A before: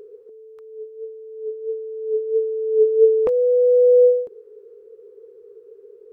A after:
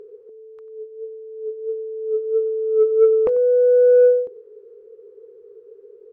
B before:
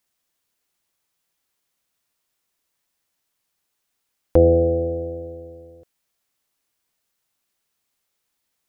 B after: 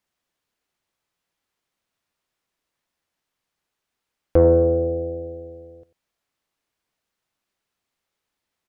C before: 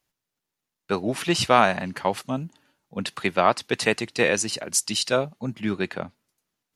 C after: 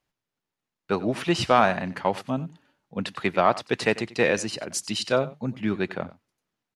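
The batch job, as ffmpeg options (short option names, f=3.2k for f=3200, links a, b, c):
-af "lowpass=f=3k:p=1,acontrast=23,aecho=1:1:93:0.126,volume=-4.5dB"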